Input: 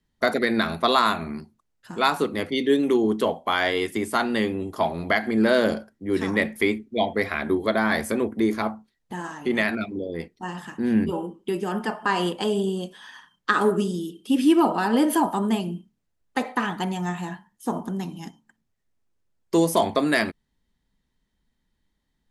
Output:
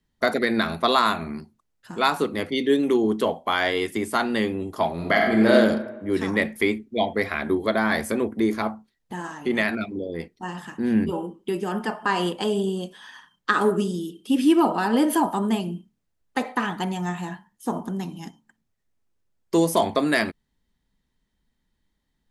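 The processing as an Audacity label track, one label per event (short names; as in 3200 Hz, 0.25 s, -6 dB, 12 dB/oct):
4.940000	5.530000	reverb throw, RT60 1.1 s, DRR 0 dB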